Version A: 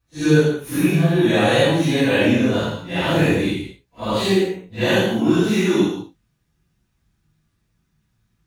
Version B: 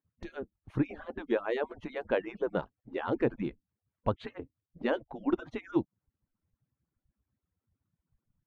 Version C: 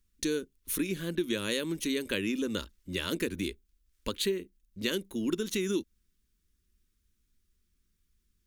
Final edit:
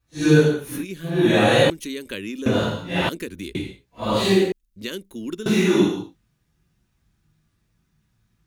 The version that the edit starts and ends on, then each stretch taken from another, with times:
A
0:00.74–0:01.14: punch in from C, crossfade 0.24 s
0:01.70–0:02.46: punch in from C
0:03.09–0:03.55: punch in from C
0:04.52–0:05.46: punch in from C
not used: B

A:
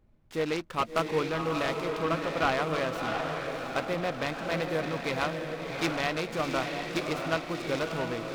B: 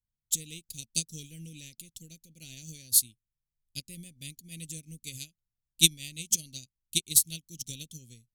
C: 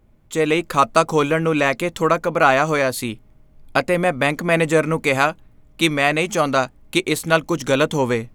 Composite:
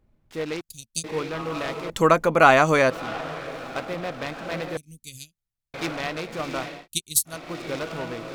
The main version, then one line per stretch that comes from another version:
A
0:00.61–0:01.04: punch in from B
0:01.90–0:02.90: punch in from C
0:04.77–0:05.74: punch in from B
0:06.76–0:07.37: punch in from B, crossfade 0.24 s

